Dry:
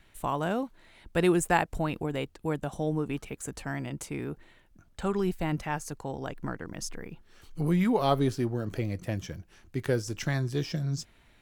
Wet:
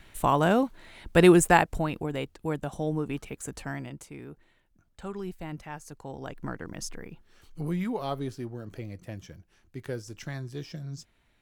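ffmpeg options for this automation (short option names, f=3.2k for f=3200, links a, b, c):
-af "volume=15.5dB,afade=t=out:st=1.31:d=0.59:silence=0.446684,afade=t=out:st=3.65:d=0.4:silence=0.398107,afade=t=in:st=5.82:d=0.83:silence=0.375837,afade=t=out:st=6.65:d=1.44:silence=0.398107"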